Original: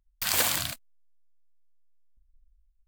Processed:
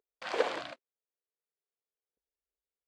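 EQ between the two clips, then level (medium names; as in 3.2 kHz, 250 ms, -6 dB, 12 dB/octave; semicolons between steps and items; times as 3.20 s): resonant high-pass 430 Hz, resonance Q 4.9; tape spacing loss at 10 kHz 43 dB; treble shelf 3.8 kHz +5.5 dB; 0.0 dB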